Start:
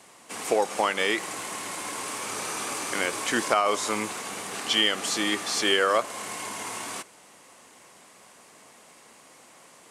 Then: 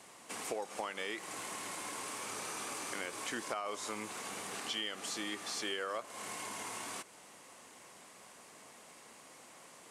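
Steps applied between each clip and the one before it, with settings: compressor 2.5:1, threshold -38 dBFS, peak gain reduction 13.5 dB; gain -3.5 dB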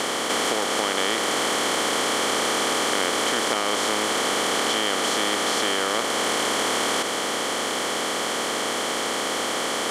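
per-bin compression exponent 0.2; gain +7 dB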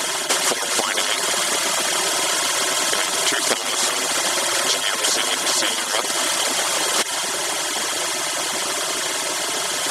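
median-filter separation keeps percussive; high shelf 2500 Hz +8.5 dB; gain +4.5 dB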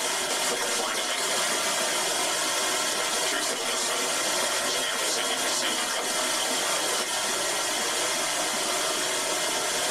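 limiter -13 dBFS, peak gain reduction 10.5 dB; shoebox room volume 150 m³, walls furnished, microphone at 1.7 m; gain -6.5 dB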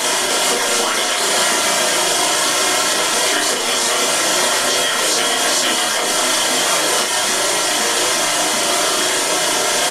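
doubler 36 ms -3.5 dB; gain +8.5 dB

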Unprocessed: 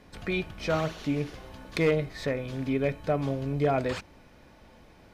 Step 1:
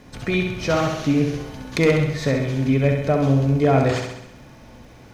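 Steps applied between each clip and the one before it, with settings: thirty-one-band EQ 125 Hz +10 dB, 250 Hz +5 dB, 6300 Hz +6 dB; crackle 140/s -55 dBFS; flutter echo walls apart 11.3 m, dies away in 0.82 s; gain +6 dB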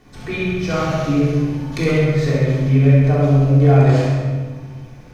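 shoebox room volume 1000 m³, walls mixed, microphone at 3.5 m; gain -6.5 dB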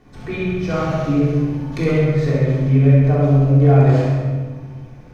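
high shelf 2300 Hz -8 dB

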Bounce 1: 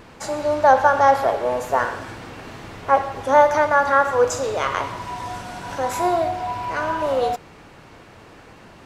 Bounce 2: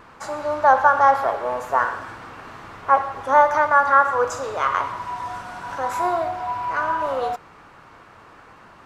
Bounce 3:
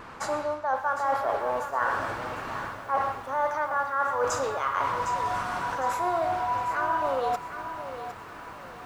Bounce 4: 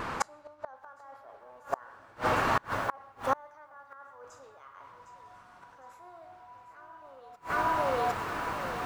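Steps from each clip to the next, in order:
bell 1200 Hz +11.5 dB 1.2 oct; gain -7 dB
reverse; compressor 8:1, threshold -27 dBFS, peak gain reduction 18 dB; reverse; lo-fi delay 0.758 s, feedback 35%, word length 9-bit, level -10 dB; gain +3 dB
flipped gate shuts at -22 dBFS, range -32 dB; gain +8 dB

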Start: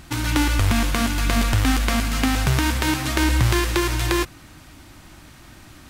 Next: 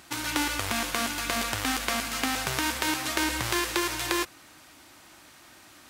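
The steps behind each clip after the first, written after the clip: HPF 56 Hz; tone controls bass -15 dB, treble +2 dB; gain -4 dB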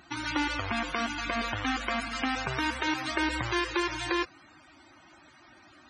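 loudest bins only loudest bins 64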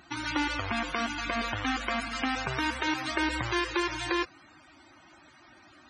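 nothing audible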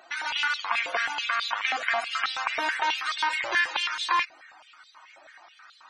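stepped high-pass 9.3 Hz 600–3800 Hz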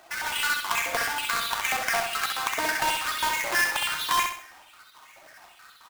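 half-waves squared off; on a send: feedback echo 65 ms, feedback 40%, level -5 dB; on the sum: gain -4 dB

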